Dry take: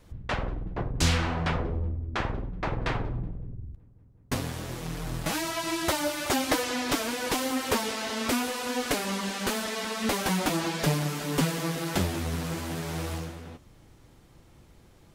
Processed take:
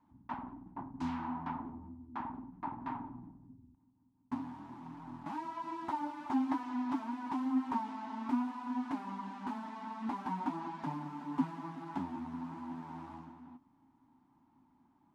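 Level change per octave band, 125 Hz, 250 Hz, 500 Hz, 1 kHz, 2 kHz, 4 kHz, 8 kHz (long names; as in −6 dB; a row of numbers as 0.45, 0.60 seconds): −19.0 dB, −5.0 dB, −21.0 dB, −5.5 dB, −19.5 dB, −27.5 dB, below −30 dB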